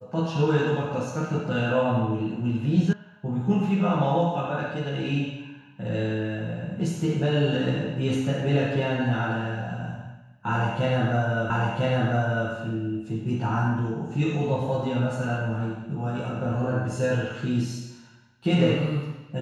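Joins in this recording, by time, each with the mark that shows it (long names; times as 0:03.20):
0:02.93: cut off before it has died away
0:11.50: the same again, the last 1 s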